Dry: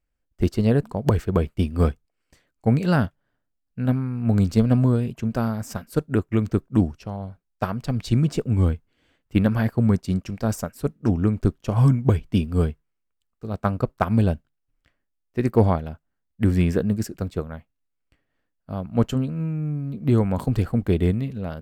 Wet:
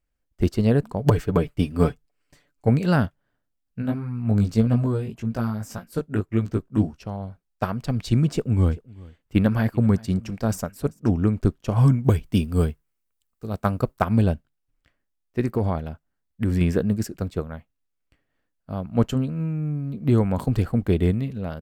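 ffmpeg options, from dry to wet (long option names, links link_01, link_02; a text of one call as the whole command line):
ffmpeg -i in.wav -filter_complex "[0:a]asettb=1/sr,asplit=3[link_01][link_02][link_03];[link_01]atrim=end=0.994[link_04];[link_02]atrim=start=0.99:end=2.69,asetpts=PTS-STARTPTS,afade=type=in:duration=0.004:curve=qsin,afade=type=out:start_time=1.696:duration=0.004:curve=qsin,aecho=1:1:6.9:0.65,atrim=end_sample=74970[link_05];[link_03]atrim=start=2.686[link_06];[link_04][link_05]acrossfade=duration=0.004:curve1=hsin:curve2=qsin[link_07];[link_07][link_06]acrossfade=duration=0.004:curve1=qsin:curve2=hsin,asplit=3[link_08][link_09][link_10];[link_08]afade=type=out:start_time=3.81:duration=0.02[link_11];[link_09]flanger=delay=17:depth=2.3:speed=1.7,afade=type=in:start_time=3.81:duration=0.02,afade=type=out:start_time=6.95:duration=0.02[link_12];[link_10]afade=type=in:start_time=6.95:duration=0.02[link_13];[link_11][link_12][link_13]amix=inputs=3:normalize=0,asplit=3[link_14][link_15][link_16];[link_14]afade=type=out:start_time=8.64:duration=0.02[link_17];[link_15]aecho=1:1:389:0.0708,afade=type=in:start_time=8.64:duration=0.02,afade=type=out:start_time=10.98:duration=0.02[link_18];[link_16]afade=type=in:start_time=10.98:duration=0.02[link_19];[link_17][link_18][link_19]amix=inputs=3:normalize=0,asettb=1/sr,asplit=3[link_20][link_21][link_22];[link_20]atrim=end=12.044[link_23];[link_21]atrim=start=12.04:end=14.02,asetpts=PTS-STARTPTS,afade=type=in:duration=0.004:curve=qsin,afade=type=out:start_time=1.976:duration=0.004:curve=qsin,highshelf=frequency=6900:gain=10.5[link_24];[link_22]atrim=start=14.016[link_25];[link_23][link_24]acrossfade=duration=0.004:curve1=hsin:curve2=qsin[link_26];[link_26][link_25]acrossfade=duration=0.004:curve1=qsin:curve2=hsin,asettb=1/sr,asplit=3[link_27][link_28][link_29];[link_27]atrim=end=15.414[link_30];[link_28]atrim=start=15.41:end=16.61,asetpts=PTS-STARTPTS,afade=type=in:duration=0.004:curve=qsin,afade=type=out:start_time=1.196:duration=0.004:curve=qsin,acompressor=threshold=-18dB:ratio=5:attack=3.2:release=140:knee=1:detection=peak[link_31];[link_29]atrim=start=16.606[link_32];[link_30][link_31]acrossfade=duration=0.004:curve1=hsin:curve2=qsin[link_33];[link_33][link_32]acrossfade=duration=0.004:curve1=qsin:curve2=hsin" out.wav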